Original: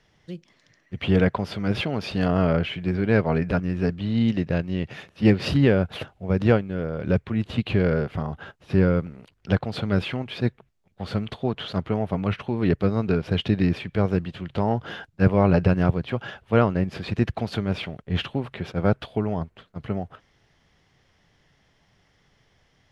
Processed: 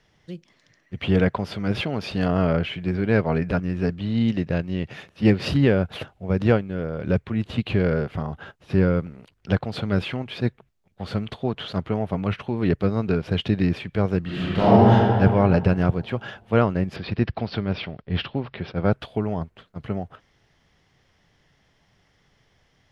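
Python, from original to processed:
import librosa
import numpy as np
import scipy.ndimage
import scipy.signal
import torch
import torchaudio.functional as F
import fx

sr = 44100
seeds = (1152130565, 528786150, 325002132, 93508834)

y = fx.reverb_throw(x, sr, start_s=14.21, length_s=0.7, rt60_s=2.2, drr_db=-11.0)
y = fx.resample_bad(y, sr, factor=4, down='none', up='filtered', at=(16.96, 18.93))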